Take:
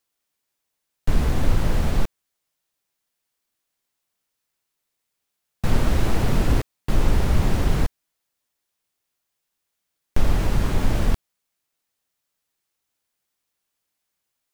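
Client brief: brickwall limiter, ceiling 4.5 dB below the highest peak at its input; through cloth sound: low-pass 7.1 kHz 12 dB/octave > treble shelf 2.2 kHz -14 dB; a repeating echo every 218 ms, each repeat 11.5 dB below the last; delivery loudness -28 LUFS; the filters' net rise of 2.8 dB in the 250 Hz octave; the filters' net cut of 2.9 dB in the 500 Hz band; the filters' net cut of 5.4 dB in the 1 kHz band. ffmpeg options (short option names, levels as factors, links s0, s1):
-af "equalizer=f=250:t=o:g=5,equalizer=f=500:t=o:g=-4,equalizer=f=1000:t=o:g=-3,alimiter=limit=0.316:level=0:latency=1,lowpass=7100,highshelf=f=2200:g=-14,aecho=1:1:218|436|654:0.266|0.0718|0.0194,volume=0.708"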